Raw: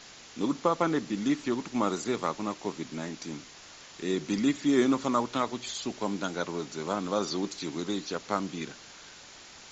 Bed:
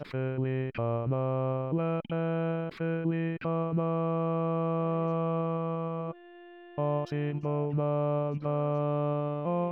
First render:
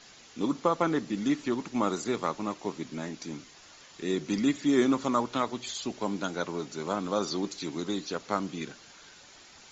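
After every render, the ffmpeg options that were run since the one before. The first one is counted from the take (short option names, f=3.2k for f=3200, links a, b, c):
-af "afftdn=nr=6:nf=-50"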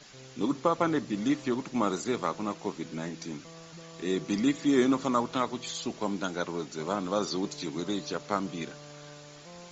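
-filter_complex "[1:a]volume=-19.5dB[a];[0:a][a]amix=inputs=2:normalize=0"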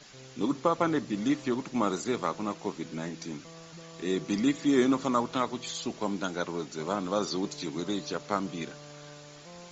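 -af anull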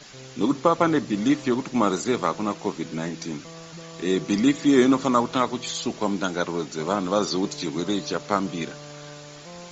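-af "volume=6.5dB"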